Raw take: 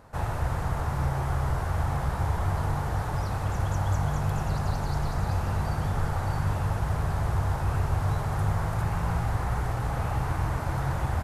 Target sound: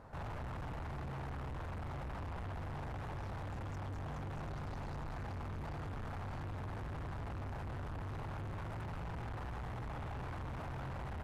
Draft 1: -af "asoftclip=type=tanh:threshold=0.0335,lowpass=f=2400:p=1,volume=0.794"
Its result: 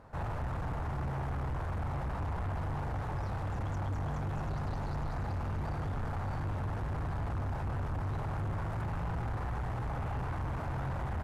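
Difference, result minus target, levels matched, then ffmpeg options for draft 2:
saturation: distortion -4 dB
-af "asoftclip=type=tanh:threshold=0.0112,lowpass=f=2400:p=1,volume=0.794"

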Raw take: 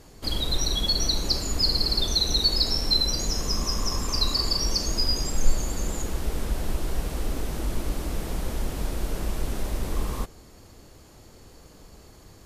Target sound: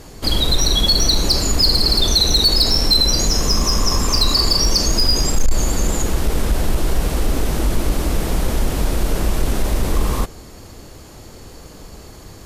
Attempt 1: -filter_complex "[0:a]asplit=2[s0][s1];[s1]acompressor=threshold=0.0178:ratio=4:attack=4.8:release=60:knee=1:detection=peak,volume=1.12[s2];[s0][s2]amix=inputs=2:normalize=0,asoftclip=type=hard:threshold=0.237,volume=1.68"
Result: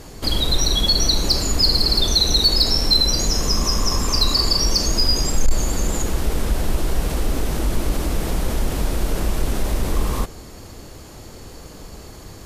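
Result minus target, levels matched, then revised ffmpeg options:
compression: peak gain reduction +8 dB
-filter_complex "[0:a]asplit=2[s0][s1];[s1]acompressor=threshold=0.0596:ratio=4:attack=4.8:release=60:knee=1:detection=peak,volume=1.12[s2];[s0][s2]amix=inputs=2:normalize=0,asoftclip=type=hard:threshold=0.237,volume=1.68"

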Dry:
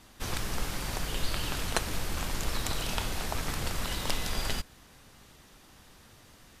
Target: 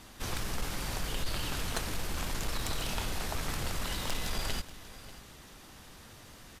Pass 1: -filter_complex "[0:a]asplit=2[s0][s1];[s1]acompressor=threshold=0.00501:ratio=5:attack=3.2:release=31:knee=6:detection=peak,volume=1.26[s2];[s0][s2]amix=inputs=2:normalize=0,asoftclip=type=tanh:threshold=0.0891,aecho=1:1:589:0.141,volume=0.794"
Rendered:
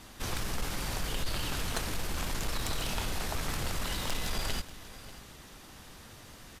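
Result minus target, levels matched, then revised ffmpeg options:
compression: peak gain reduction -7 dB
-filter_complex "[0:a]asplit=2[s0][s1];[s1]acompressor=threshold=0.00178:ratio=5:attack=3.2:release=31:knee=6:detection=peak,volume=1.26[s2];[s0][s2]amix=inputs=2:normalize=0,asoftclip=type=tanh:threshold=0.0891,aecho=1:1:589:0.141,volume=0.794"

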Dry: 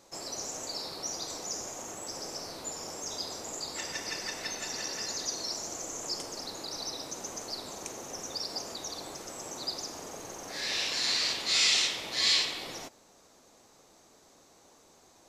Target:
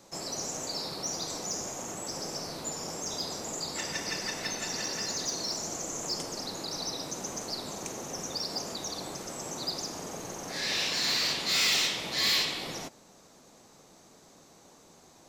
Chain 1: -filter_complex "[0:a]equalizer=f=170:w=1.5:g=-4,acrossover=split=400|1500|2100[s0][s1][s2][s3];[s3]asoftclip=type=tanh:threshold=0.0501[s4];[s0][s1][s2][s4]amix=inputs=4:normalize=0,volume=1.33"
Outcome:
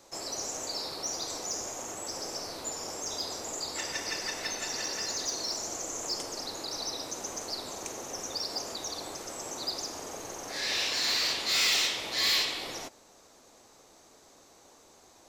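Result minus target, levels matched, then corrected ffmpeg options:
125 Hz band -7.5 dB
-filter_complex "[0:a]equalizer=f=170:w=1.5:g=7.5,acrossover=split=400|1500|2100[s0][s1][s2][s3];[s3]asoftclip=type=tanh:threshold=0.0501[s4];[s0][s1][s2][s4]amix=inputs=4:normalize=0,volume=1.33"

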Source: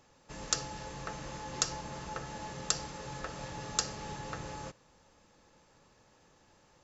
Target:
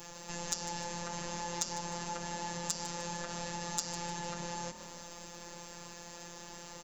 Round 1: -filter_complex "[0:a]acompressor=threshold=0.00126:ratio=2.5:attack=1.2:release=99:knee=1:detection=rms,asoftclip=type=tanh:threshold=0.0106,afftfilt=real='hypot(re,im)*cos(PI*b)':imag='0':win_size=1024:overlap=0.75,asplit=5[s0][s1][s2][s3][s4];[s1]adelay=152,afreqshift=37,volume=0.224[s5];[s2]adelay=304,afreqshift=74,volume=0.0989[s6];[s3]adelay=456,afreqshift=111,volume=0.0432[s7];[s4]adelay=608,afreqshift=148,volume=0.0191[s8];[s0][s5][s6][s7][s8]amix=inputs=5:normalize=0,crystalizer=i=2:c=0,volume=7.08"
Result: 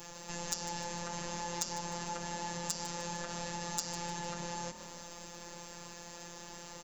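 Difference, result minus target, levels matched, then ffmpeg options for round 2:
saturation: distortion +14 dB
-filter_complex "[0:a]acompressor=threshold=0.00126:ratio=2.5:attack=1.2:release=99:knee=1:detection=rms,asoftclip=type=tanh:threshold=0.0316,afftfilt=real='hypot(re,im)*cos(PI*b)':imag='0':win_size=1024:overlap=0.75,asplit=5[s0][s1][s2][s3][s4];[s1]adelay=152,afreqshift=37,volume=0.224[s5];[s2]adelay=304,afreqshift=74,volume=0.0989[s6];[s3]adelay=456,afreqshift=111,volume=0.0432[s7];[s4]adelay=608,afreqshift=148,volume=0.0191[s8];[s0][s5][s6][s7][s8]amix=inputs=5:normalize=0,crystalizer=i=2:c=0,volume=7.08"

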